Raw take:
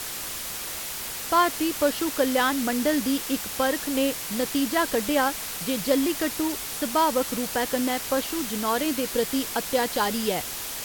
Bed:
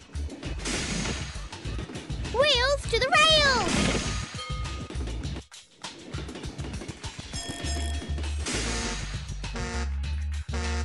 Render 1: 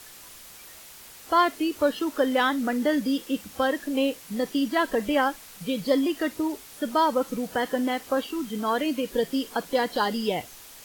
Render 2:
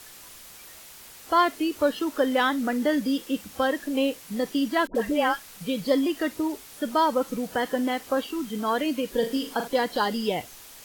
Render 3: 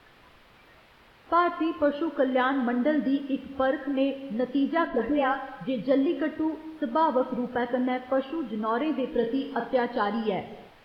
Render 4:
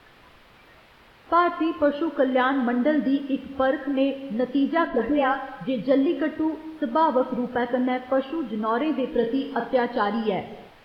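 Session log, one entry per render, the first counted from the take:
noise print and reduce 13 dB
4.87–5.44 s: phase dispersion highs, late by 81 ms, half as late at 860 Hz; 9.17–9.68 s: flutter echo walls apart 6.8 m, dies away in 0.33 s
distance through air 420 m; gated-style reverb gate 400 ms falling, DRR 9 dB
trim +3 dB

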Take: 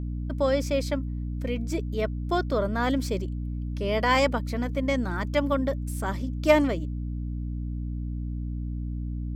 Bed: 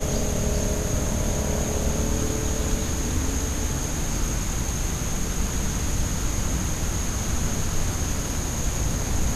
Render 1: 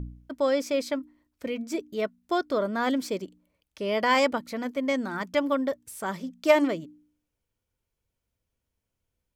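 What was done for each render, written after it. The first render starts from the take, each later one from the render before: de-hum 60 Hz, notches 5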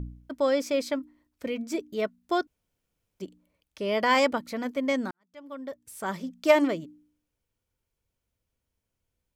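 2.47–3.20 s: room tone; 5.11–6.09 s: fade in quadratic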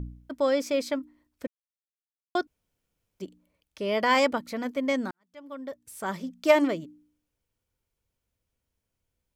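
1.47–2.35 s: mute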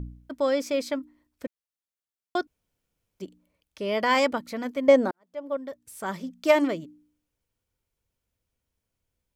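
4.88–5.57 s: peaking EQ 550 Hz +13 dB 1.6 oct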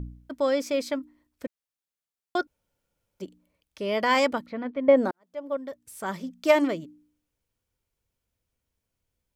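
2.39–3.24 s: small resonant body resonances 560/870/1400 Hz, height 9 dB, ringing for 40 ms; 4.46–4.97 s: distance through air 360 m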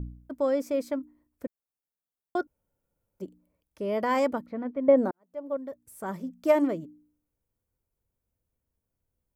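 peaking EQ 3.7 kHz -14 dB 2.4 oct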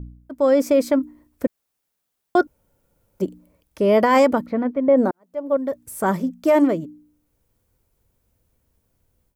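level rider gain up to 15 dB; peak limiter -8 dBFS, peak gain reduction 7 dB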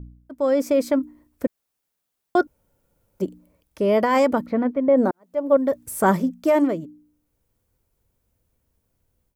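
gain riding within 4 dB 0.5 s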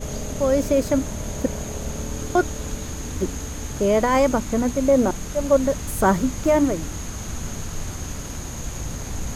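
add bed -5 dB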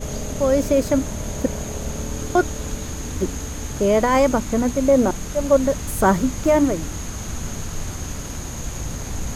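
trim +1.5 dB

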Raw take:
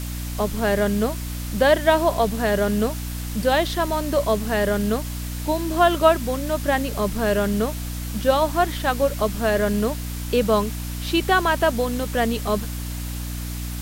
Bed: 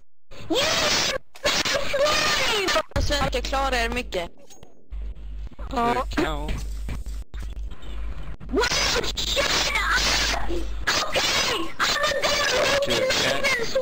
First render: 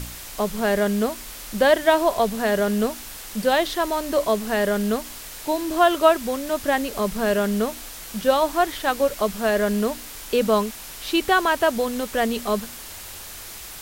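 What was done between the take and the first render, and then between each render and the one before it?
de-hum 60 Hz, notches 5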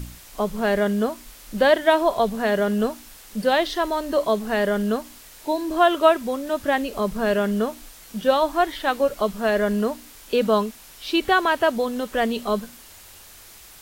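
noise print and reduce 8 dB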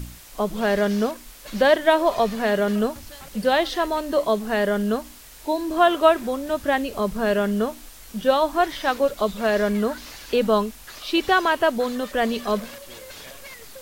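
add bed -20 dB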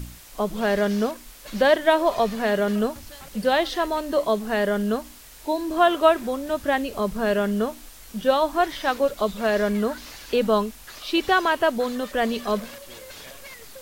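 trim -1 dB

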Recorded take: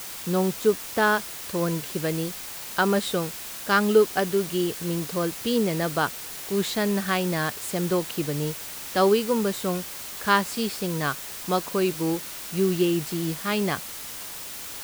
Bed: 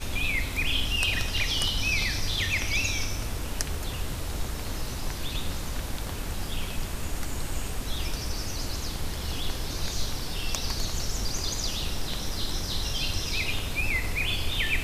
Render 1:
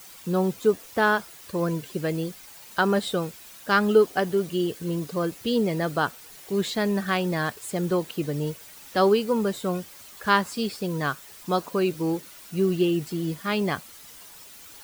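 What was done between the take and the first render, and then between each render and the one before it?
noise reduction 11 dB, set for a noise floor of -37 dBFS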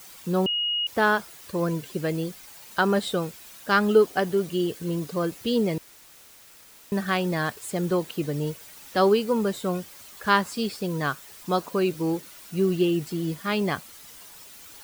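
0.46–0.87 s: bleep 2.88 kHz -23 dBFS; 5.78–6.92 s: room tone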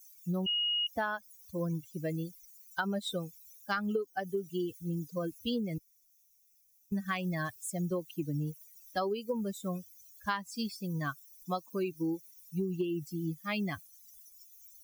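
expander on every frequency bin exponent 2; compression 16:1, threshold -29 dBFS, peak gain reduction 16 dB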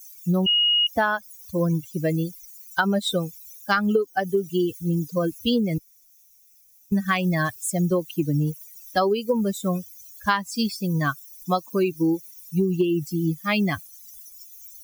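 trim +11.5 dB

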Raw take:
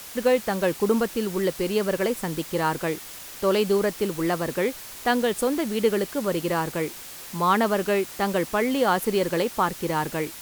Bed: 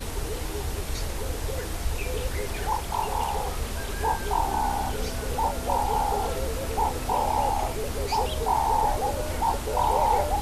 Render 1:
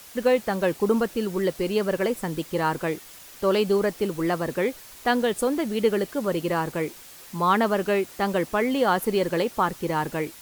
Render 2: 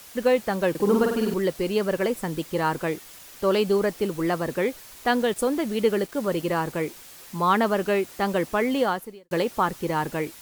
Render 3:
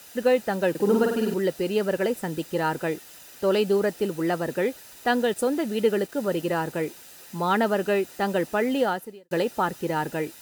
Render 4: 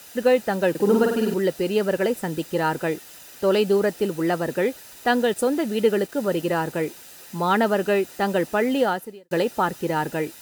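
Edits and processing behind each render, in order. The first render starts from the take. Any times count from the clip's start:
noise reduction 6 dB, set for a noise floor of -40 dBFS
0.70–1.34 s: flutter echo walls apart 8.6 m, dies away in 0.76 s; 5.12–6.48 s: small samples zeroed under -41 dBFS; 8.81–9.31 s: fade out quadratic
comb of notches 1.1 kHz
trim +2.5 dB

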